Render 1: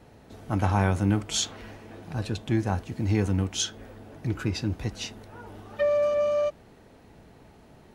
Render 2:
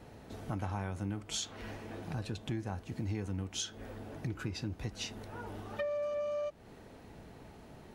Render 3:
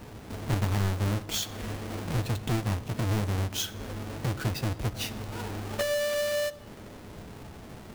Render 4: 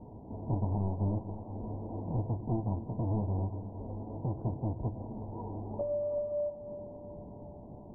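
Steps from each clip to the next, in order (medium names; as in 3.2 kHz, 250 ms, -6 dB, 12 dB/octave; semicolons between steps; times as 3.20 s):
compression 4:1, threshold -36 dBFS, peak gain reduction 15.5 dB
square wave that keeps the level; reverberation RT60 1.7 s, pre-delay 9 ms, DRR 13.5 dB; trim +3 dB
rippled Chebyshev low-pass 990 Hz, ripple 3 dB; on a send: two-band feedback delay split 430 Hz, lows 241 ms, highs 371 ms, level -12 dB; on the sum: trim -2 dB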